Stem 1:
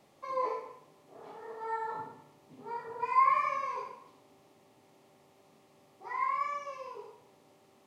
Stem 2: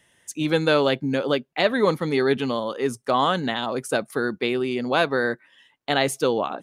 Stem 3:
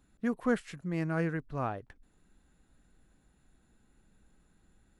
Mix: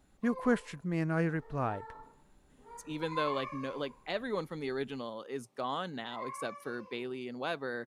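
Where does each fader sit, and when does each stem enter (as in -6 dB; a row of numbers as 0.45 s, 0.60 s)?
-11.5 dB, -15.0 dB, +0.5 dB; 0.00 s, 2.50 s, 0.00 s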